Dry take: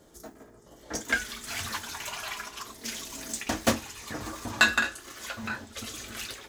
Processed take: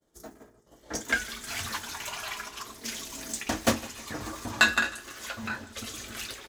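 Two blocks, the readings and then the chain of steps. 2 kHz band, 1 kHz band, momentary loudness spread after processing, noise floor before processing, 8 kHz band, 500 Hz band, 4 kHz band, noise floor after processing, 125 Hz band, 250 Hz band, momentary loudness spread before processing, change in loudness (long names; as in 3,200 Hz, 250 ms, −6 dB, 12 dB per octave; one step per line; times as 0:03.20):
0.0 dB, 0.0 dB, 15 LU, −54 dBFS, 0.0 dB, 0.0 dB, 0.0 dB, −60 dBFS, 0.0 dB, 0.0 dB, 15 LU, 0.0 dB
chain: repeating echo 156 ms, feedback 51%, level −20.5 dB
downward expander −47 dBFS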